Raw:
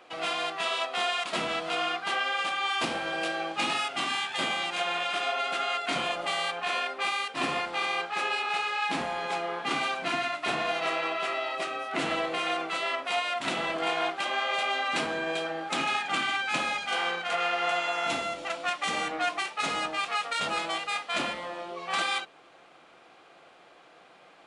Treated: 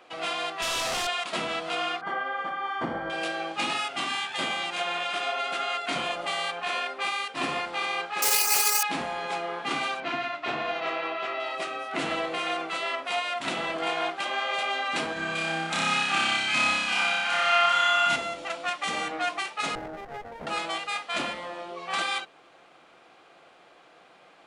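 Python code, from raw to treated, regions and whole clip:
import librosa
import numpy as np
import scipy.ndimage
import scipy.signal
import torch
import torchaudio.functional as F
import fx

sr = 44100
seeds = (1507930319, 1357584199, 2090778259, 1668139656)

y = fx.chain(x, sr, fx.clip_1bit(),
    fx.lowpass(hz=6700.0, slope=12),
    fx.high_shelf(hz=5200.0, db=10.0), at=(0.62, 1.07))
y = fx.chain(y, sr, fx.savgol(points=41),
    fx.low_shelf(hz=210.0, db=7.0), at=(2.01, 3.1))
y = fx.chain(y, sr, fx.doubler(ms=19.0, db=-5.0),
    fx.resample_bad(factor=6, down='filtered', up='zero_stuff'),
    fx.doppler_dist(depth_ms=0.16), at=(8.22, 8.83))
y = fx.chain(y, sr, fx.air_absorb(metres=140.0),
    fx.notch(hz=180.0, q=5.0), at=(10.0, 11.4))
y = fx.chain(y, sr, fx.peak_eq(hz=450.0, db=-10.0, octaves=1.0),
    fx.room_flutter(wall_m=5.2, rt60_s=1.5), at=(15.13, 18.16))
y = fx.chain(y, sr, fx.cheby2_bandstop(low_hz=1800.0, high_hz=9200.0, order=4, stop_db=40),
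    fx.running_max(window=17), at=(19.75, 20.47))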